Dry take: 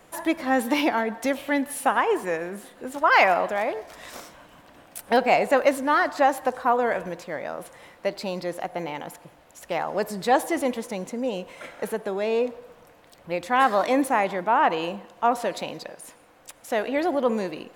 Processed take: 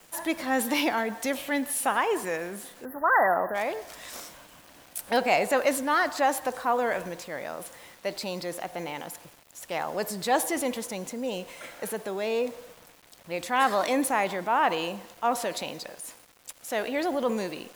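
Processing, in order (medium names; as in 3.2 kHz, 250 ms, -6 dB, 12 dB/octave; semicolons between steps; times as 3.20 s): treble shelf 3.2 kHz +9 dB; word length cut 8-bit, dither none; spectral selection erased 2.85–3.55 s, 2–11 kHz; transient shaper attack -2 dB, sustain +2 dB; trim -4 dB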